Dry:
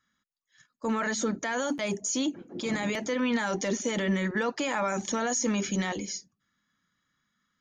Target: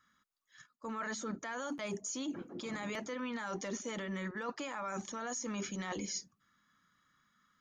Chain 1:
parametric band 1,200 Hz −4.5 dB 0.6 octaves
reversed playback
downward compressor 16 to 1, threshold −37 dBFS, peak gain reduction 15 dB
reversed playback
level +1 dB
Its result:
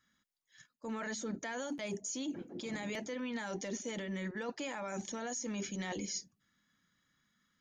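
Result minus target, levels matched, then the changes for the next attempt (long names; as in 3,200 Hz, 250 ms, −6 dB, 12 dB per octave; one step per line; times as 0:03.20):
1,000 Hz band −3.5 dB
change: parametric band 1,200 Hz +7.5 dB 0.6 octaves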